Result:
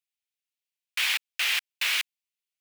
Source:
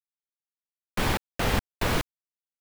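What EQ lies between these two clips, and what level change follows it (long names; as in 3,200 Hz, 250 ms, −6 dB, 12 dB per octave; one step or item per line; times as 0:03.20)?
high-pass with resonance 2,500 Hz, resonance Q 2.2
+3.0 dB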